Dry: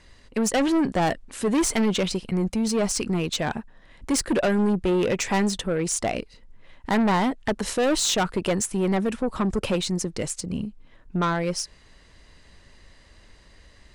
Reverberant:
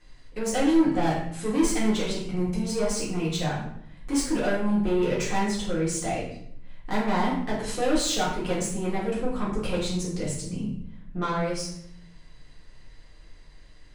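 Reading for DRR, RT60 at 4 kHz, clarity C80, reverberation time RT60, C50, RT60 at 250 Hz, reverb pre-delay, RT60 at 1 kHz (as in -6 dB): -7.5 dB, 0.55 s, 6.5 dB, 0.65 s, 3.0 dB, 1.1 s, 3 ms, 0.60 s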